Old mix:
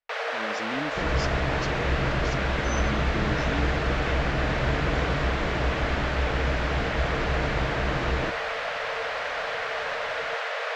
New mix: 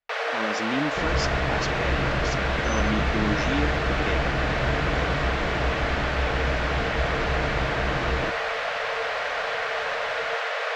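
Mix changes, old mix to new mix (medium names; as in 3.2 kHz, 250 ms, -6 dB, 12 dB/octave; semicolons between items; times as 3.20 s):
speech +6.0 dB; first sound: send +11.5 dB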